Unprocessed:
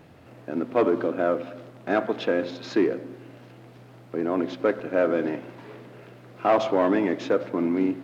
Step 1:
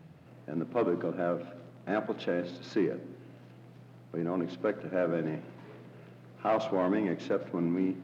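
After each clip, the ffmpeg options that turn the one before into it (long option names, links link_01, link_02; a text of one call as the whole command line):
ffmpeg -i in.wav -af "equalizer=frequency=160:width=3:gain=14,volume=-8dB" out.wav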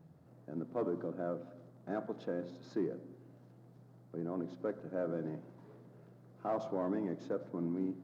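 ffmpeg -i in.wav -af "equalizer=frequency=2600:width_type=o:width=1.2:gain=-14.5,volume=-6.5dB" out.wav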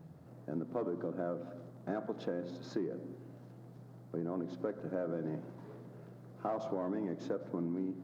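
ffmpeg -i in.wav -af "acompressor=threshold=-39dB:ratio=6,volume=6dB" out.wav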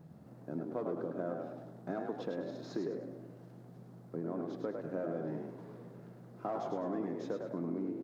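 ffmpeg -i in.wav -filter_complex "[0:a]asplit=6[link_01][link_02][link_03][link_04][link_05][link_06];[link_02]adelay=103,afreqshift=53,volume=-5dB[link_07];[link_03]adelay=206,afreqshift=106,volume=-13.6dB[link_08];[link_04]adelay=309,afreqshift=159,volume=-22.3dB[link_09];[link_05]adelay=412,afreqshift=212,volume=-30.9dB[link_10];[link_06]adelay=515,afreqshift=265,volume=-39.5dB[link_11];[link_01][link_07][link_08][link_09][link_10][link_11]amix=inputs=6:normalize=0,volume=-1.5dB" out.wav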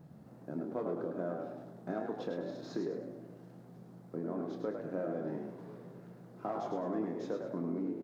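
ffmpeg -i in.wav -filter_complex "[0:a]asplit=2[link_01][link_02];[link_02]adelay=28,volume=-8dB[link_03];[link_01][link_03]amix=inputs=2:normalize=0" out.wav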